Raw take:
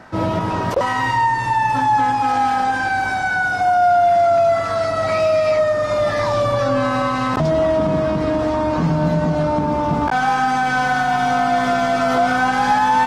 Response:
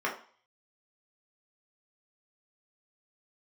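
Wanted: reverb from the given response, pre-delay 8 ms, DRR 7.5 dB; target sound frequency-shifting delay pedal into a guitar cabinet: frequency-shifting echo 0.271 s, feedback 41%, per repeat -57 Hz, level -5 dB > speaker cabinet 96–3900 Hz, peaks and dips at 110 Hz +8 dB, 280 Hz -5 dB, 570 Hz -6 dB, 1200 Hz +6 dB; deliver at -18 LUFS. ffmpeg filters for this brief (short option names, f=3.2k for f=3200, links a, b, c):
-filter_complex "[0:a]asplit=2[a][b];[1:a]atrim=start_sample=2205,adelay=8[c];[b][c]afir=irnorm=-1:irlink=0,volume=-17dB[d];[a][d]amix=inputs=2:normalize=0,asplit=6[e][f][g][h][i][j];[f]adelay=271,afreqshift=-57,volume=-5dB[k];[g]adelay=542,afreqshift=-114,volume=-12.7dB[l];[h]adelay=813,afreqshift=-171,volume=-20.5dB[m];[i]adelay=1084,afreqshift=-228,volume=-28.2dB[n];[j]adelay=1355,afreqshift=-285,volume=-36dB[o];[e][k][l][m][n][o]amix=inputs=6:normalize=0,highpass=96,equalizer=f=110:t=q:w=4:g=8,equalizer=f=280:t=q:w=4:g=-5,equalizer=f=570:t=q:w=4:g=-6,equalizer=f=1.2k:t=q:w=4:g=6,lowpass=f=3.9k:w=0.5412,lowpass=f=3.9k:w=1.3066,volume=-2.5dB"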